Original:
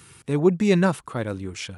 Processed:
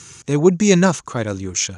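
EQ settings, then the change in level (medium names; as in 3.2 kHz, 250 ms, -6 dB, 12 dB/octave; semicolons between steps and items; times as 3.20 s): resonant low-pass 6.5 kHz, resonance Q 8.9; +5.0 dB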